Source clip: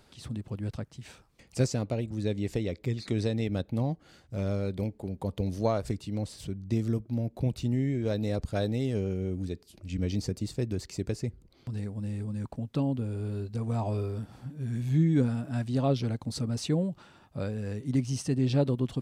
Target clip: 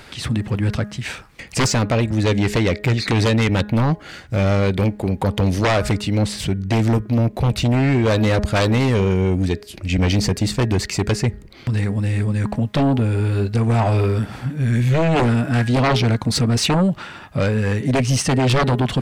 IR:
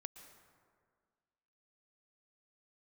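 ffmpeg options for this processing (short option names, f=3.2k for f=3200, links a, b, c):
-af "equalizer=f=2k:t=o:w=1.4:g=9.5,bandreject=f=207.6:t=h:w=4,bandreject=f=415.2:t=h:w=4,bandreject=f=622.8:t=h:w=4,bandreject=f=830.4:t=h:w=4,bandreject=f=1.038k:t=h:w=4,bandreject=f=1.2456k:t=h:w=4,bandreject=f=1.4532k:t=h:w=4,bandreject=f=1.6608k:t=h:w=4,bandreject=f=1.8684k:t=h:w=4,aeval=exprs='0.237*sin(PI/2*3.98*val(0)/0.237)':c=same"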